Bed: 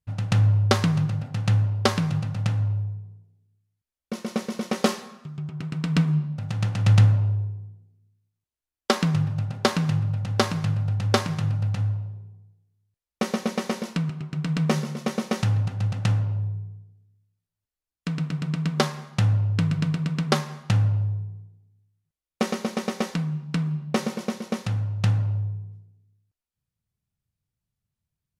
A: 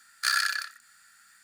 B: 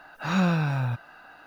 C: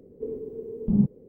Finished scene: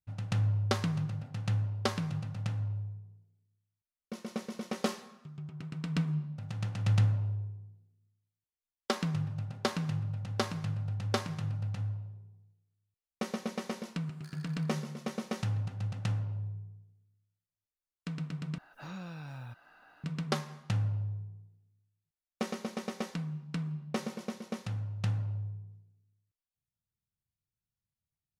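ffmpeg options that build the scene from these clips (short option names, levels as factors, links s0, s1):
-filter_complex "[0:a]volume=0.316[s0];[1:a]acompressor=threshold=0.0112:ratio=6:attack=3.2:release=140:knee=1:detection=peak[s1];[2:a]acrossover=split=740|3100[s2][s3][s4];[s2]acompressor=threshold=0.0224:ratio=4[s5];[s3]acompressor=threshold=0.00708:ratio=4[s6];[s4]acompressor=threshold=0.00398:ratio=4[s7];[s5][s6][s7]amix=inputs=3:normalize=0[s8];[s0]asplit=2[s9][s10];[s9]atrim=end=18.584[s11];[s8]atrim=end=1.46,asetpts=PTS-STARTPTS,volume=0.299[s12];[s10]atrim=start=20.036[s13];[s1]atrim=end=1.43,asetpts=PTS-STARTPTS,volume=0.168,afade=t=in:d=0.004:c=hsin,afade=t=out:st=1.426:d=0.004:c=hsin,adelay=14010[s14];[s11][s12]acrossfade=d=0.004:c1=hsin:c2=hsin[s15];[s15][s13]acrossfade=d=0.004:c1=hsin:c2=hsin[s16];[s16][s14]amix=inputs=2:normalize=0"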